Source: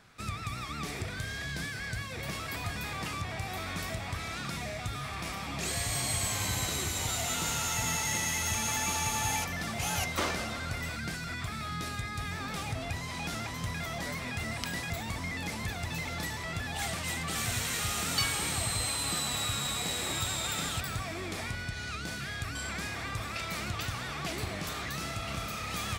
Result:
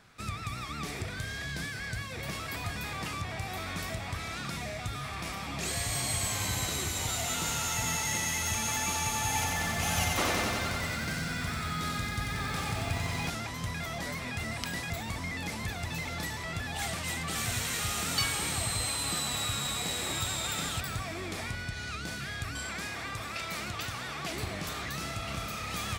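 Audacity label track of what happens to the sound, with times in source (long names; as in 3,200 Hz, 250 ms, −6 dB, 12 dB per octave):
9.260000	13.300000	feedback echo at a low word length 92 ms, feedback 80%, word length 9 bits, level −3 dB
22.630000	24.340000	low-shelf EQ 140 Hz −7 dB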